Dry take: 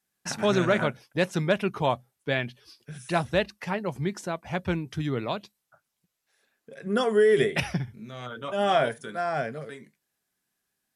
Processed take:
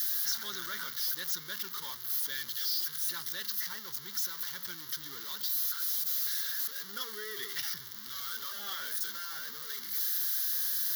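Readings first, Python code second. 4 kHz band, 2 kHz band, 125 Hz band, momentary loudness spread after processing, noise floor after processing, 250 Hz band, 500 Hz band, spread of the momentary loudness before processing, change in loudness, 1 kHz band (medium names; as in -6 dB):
+1.5 dB, -9.5 dB, -28.0 dB, 9 LU, -45 dBFS, -26.5 dB, -28.5 dB, 15 LU, -5.0 dB, -16.5 dB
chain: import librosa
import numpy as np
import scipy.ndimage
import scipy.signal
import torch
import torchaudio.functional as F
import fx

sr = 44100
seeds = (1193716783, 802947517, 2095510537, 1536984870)

y = x + 0.5 * 10.0 ** (-23.0 / 20.0) * np.sign(x)
y = np.diff(y, prepend=0.0)
y = fx.fixed_phaser(y, sr, hz=2500.0, stages=6)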